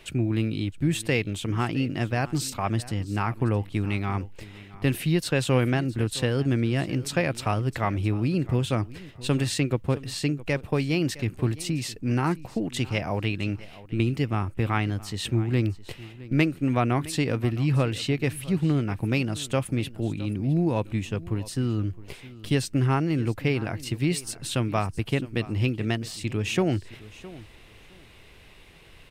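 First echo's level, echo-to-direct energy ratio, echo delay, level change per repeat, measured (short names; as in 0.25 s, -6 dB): -18.5 dB, -18.5 dB, 0.663 s, -15.0 dB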